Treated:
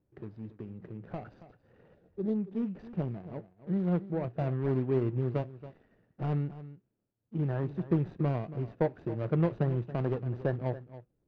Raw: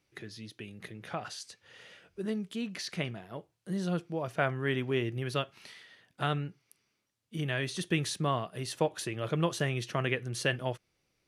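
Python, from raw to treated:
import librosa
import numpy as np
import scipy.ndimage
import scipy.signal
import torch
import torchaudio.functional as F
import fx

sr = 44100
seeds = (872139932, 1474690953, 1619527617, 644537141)

y = scipy.signal.medfilt(x, 41)
y = fx.spec_box(y, sr, start_s=1.95, length_s=0.4, low_hz=870.0, high_hz=3200.0, gain_db=-8)
y = fx.spacing_loss(y, sr, db_at_10k=39)
y = y + 10.0 ** (-15.0 / 20.0) * np.pad(y, (int(278 * sr / 1000.0), 0))[:len(y)]
y = F.gain(torch.from_numpy(y), 4.5).numpy()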